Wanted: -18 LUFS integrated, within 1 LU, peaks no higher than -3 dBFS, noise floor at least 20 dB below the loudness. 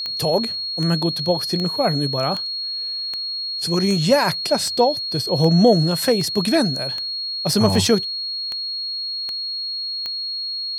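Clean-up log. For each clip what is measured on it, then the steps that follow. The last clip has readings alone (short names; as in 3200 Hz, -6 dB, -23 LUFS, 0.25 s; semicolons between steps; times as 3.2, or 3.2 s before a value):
clicks 14; steady tone 4300 Hz; tone level -24 dBFS; loudness -20.0 LUFS; peak -3.0 dBFS; loudness target -18.0 LUFS
-> de-click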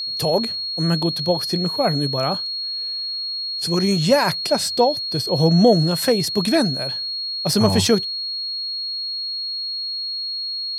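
clicks 0; steady tone 4300 Hz; tone level -24 dBFS
-> notch 4300 Hz, Q 30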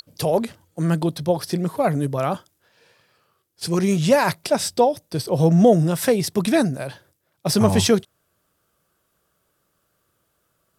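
steady tone none; loudness -20.5 LUFS; peak -3.0 dBFS; loudness target -18.0 LUFS
-> gain +2.5 dB; limiter -3 dBFS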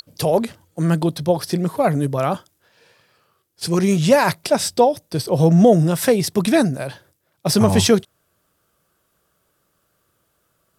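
loudness -18.0 LUFS; peak -3.0 dBFS; noise floor -68 dBFS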